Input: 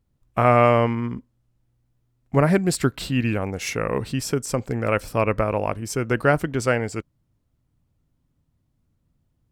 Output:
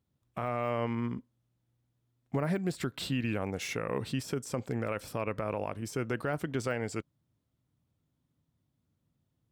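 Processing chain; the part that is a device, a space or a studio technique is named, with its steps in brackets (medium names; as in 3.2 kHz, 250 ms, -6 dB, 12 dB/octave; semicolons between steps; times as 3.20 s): broadcast voice chain (high-pass 94 Hz 12 dB/octave; de-esser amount 65%; compression, threshold -20 dBFS, peak gain reduction 8.5 dB; peaking EQ 3.5 kHz +4.5 dB 0.31 oct; peak limiter -16 dBFS, peak gain reduction 7.5 dB); trim -5.5 dB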